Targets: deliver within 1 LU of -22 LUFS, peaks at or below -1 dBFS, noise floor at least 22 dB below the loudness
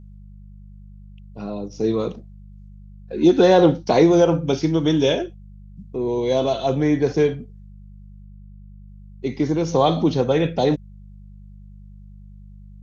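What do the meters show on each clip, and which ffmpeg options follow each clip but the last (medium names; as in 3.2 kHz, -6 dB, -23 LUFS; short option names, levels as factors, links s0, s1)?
hum 50 Hz; highest harmonic 200 Hz; hum level -40 dBFS; loudness -19.5 LUFS; peak level -3.0 dBFS; loudness target -22.0 LUFS
-> -af "bandreject=f=50:t=h:w=4,bandreject=f=100:t=h:w=4,bandreject=f=150:t=h:w=4,bandreject=f=200:t=h:w=4"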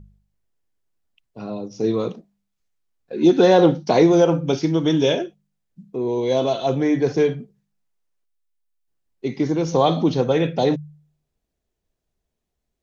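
hum not found; loudness -19.0 LUFS; peak level -3.5 dBFS; loudness target -22.0 LUFS
-> -af "volume=0.708"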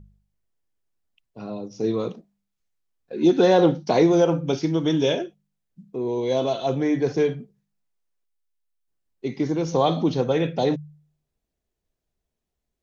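loudness -22.0 LUFS; peak level -6.5 dBFS; noise floor -82 dBFS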